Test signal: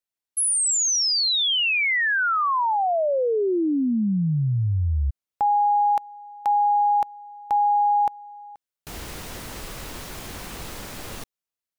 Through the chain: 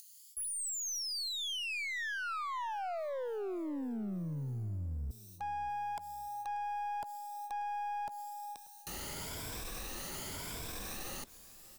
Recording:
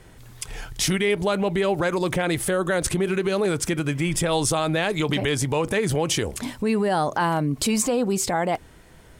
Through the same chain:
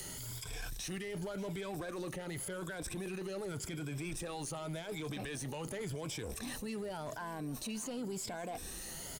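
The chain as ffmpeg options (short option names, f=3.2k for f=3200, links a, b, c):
-filter_complex "[0:a]afftfilt=real='re*pow(10,11/40*sin(2*PI*(1.7*log(max(b,1)*sr/1024/100)/log(2)-(0.89)*(pts-256)/sr)))':imag='im*pow(10,11/40*sin(2*PI*(1.7*log(max(b,1)*sr/1024/100)/log(2)-(0.89)*(pts-256)/sr)))':win_size=1024:overlap=0.75,acrossover=split=270|4100[a][b][c];[c]acompressor=mode=upward:threshold=-34dB:ratio=2.5:attack=14:release=42:knee=2.83:detection=peak[d];[a][b][d]amix=inputs=3:normalize=0,alimiter=limit=-17dB:level=0:latency=1:release=127,areverse,acompressor=threshold=-36dB:ratio=8:attack=0.39:release=48:knee=6:detection=rms,areverse,aeval=exprs='clip(val(0),-1,0.0126)':c=same,aecho=1:1:586|1172|1758:0.112|0.0482|0.0207"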